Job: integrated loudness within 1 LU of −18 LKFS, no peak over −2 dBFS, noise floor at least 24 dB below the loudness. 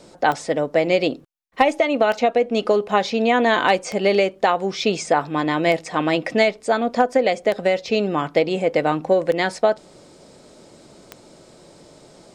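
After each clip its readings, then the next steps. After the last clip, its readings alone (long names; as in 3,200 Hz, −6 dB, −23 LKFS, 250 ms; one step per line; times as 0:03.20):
number of clicks 7; integrated loudness −20.0 LKFS; sample peak −3.0 dBFS; target loudness −18.0 LKFS
→ click removal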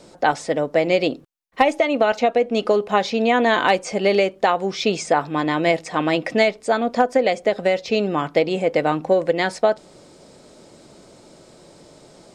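number of clicks 0; integrated loudness −20.0 LKFS; sample peak −3.0 dBFS; target loudness −18.0 LKFS
→ level +2 dB
brickwall limiter −2 dBFS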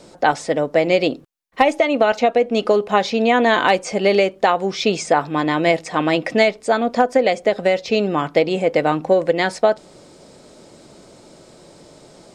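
integrated loudness −18.0 LKFS; sample peak −2.0 dBFS; background noise floor −47 dBFS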